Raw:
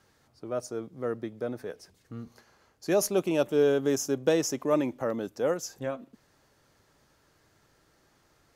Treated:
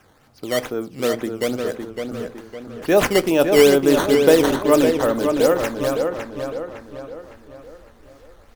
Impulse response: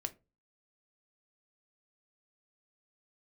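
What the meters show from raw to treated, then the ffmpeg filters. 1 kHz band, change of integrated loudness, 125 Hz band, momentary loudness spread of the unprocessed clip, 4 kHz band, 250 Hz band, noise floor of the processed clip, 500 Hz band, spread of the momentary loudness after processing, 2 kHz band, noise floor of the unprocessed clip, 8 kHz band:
+13.0 dB, +10.5 dB, +8.5 dB, 19 LU, +14.0 dB, +11.0 dB, −52 dBFS, +11.0 dB, 21 LU, +14.5 dB, −67 dBFS, +6.0 dB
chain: -filter_complex "[0:a]asubboost=boost=8.5:cutoff=51,acrusher=samples=10:mix=1:aa=0.000001:lfo=1:lforange=16:lforate=2.3,asplit=2[link_01][link_02];[link_02]adelay=558,lowpass=frequency=3800:poles=1,volume=-5.5dB,asplit=2[link_03][link_04];[link_04]adelay=558,lowpass=frequency=3800:poles=1,volume=0.46,asplit=2[link_05][link_06];[link_06]adelay=558,lowpass=frequency=3800:poles=1,volume=0.46,asplit=2[link_07][link_08];[link_08]adelay=558,lowpass=frequency=3800:poles=1,volume=0.46,asplit=2[link_09][link_10];[link_10]adelay=558,lowpass=frequency=3800:poles=1,volume=0.46,asplit=2[link_11][link_12];[link_12]adelay=558,lowpass=frequency=3800:poles=1,volume=0.46[link_13];[link_01][link_03][link_05][link_07][link_09][link_11][link_13]amix=inputs=7:normalize=0,asplit=2[link_14][link_15];[1:a]atrim=start_sample=2205,asetrate=34839,aresample=44100[link_16];[link_15][link_16]afir=irnorm=-1:irlink=0,volume=-1dB[link_17];[link_14][link_17]amix=inputs=2:normalize=0,volume=5dB"

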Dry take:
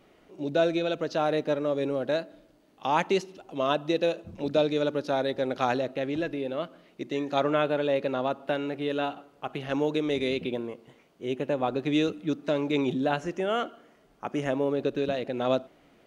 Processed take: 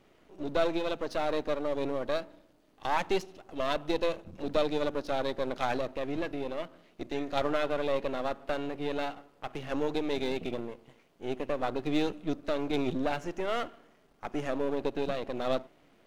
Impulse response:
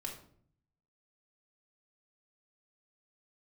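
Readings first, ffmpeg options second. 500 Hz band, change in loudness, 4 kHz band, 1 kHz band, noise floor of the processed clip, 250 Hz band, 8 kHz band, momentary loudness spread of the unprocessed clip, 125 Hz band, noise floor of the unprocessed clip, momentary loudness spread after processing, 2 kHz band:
−4.5 dB, −4.5 dB, −4.0 dB, −3.5 dB, −63 dBFS, −5.0 dB, can't be measured, 10 LU, −6.0 dB, −61 dBFS, 10 LU, −3.5 dB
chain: -af "aeval=exprs='if(lt(val(0),0),0.251*val(0),val(0))':channel_layout=same"

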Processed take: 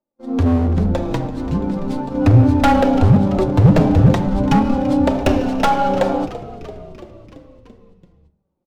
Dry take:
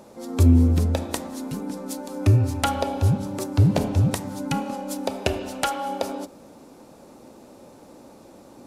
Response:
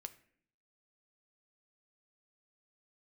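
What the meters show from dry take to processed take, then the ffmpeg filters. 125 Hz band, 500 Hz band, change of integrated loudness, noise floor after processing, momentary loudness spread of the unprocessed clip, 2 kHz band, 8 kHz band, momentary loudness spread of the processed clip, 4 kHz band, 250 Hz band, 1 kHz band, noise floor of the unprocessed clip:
+5.5 dB, +9.5 dB, +7.5 dB, −71 dBFS, 14 LU, +7.0 dB, can't be measured, 11 LU, +2.0 dB, +10.0 dB, +10.0 dB, −48 dBFS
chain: -filter_complex "[0:a]agate=range=-45dB:threshold=-34dB:ratio=16:detection=peak,flanger=delay=3.2:depth=3.3:regen=29:speed=0.39:shape=triangular,lowpass=frequency=4000:width=0.5412,lowpass=frequency=4000:width=1.3066,acrossover=split=160|1400[link_01][link_02][link_03];[link_03]aeval=exprs='max(val(0),0)':channel_layout=same[link_04];[link_01][link_02][link_04]amix=inputs=3:normalize=0,equalizer=frequency=72:width=2.3:gain=-6,asplit=7[link_05][link_06][link_07][link_08][link_09][link_10][link_11];[link_06]adelay=337,afreqshift=-61,volume=-18dB[link_12];[link_07]adelay=674,afreqshift=-122,volume=-21.9dB[link_13];[link_08]adelay=1011,afreqshift=-183,volume=-25.8dB[link_14];[link_09]adelay=1348,afreqshift=-244,volume=-29.6dB[link_15];[link_10]adelay=1685,afreqshift=-305,volume=-33.5dB[link_16];[link_11]adelay=2022,afreqshift=-366,volume=-37.4dB[link_17];[link_05][link_12][link_13][link_14][link_15][link_16][link_17]amix=inputs=7:normalize=0,asoftclip=type=hard:threshold=-24.5dB,lowshelf=frequency=140:gain=7,bandreject=frequency=48.99:width_type=h:width=4,bandreject=frequency=97.98:width_type=h:width=4,bandreject=frequency=146.97:width_type=h:width=4,asplit=2[link_18][link_19];[1:a]atrim=start_sample=2205,asetrate=32193,aresample=44100[link_20];[link_19][link_20]afir=irnorm=-1:irlink=0,volume=10dB[link_21];[link_18][link_21]amix=inputs=2:normalize=0,dynaudnorm=framelen=370:gausssize=9:maxgain=8dB"

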